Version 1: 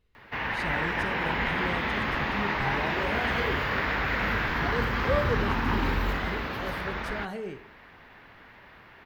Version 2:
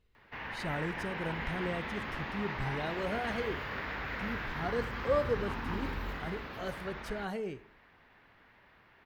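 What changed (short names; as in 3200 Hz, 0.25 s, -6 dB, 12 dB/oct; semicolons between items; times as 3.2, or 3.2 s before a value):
speech: send -6.0 dB; background -10.5 dB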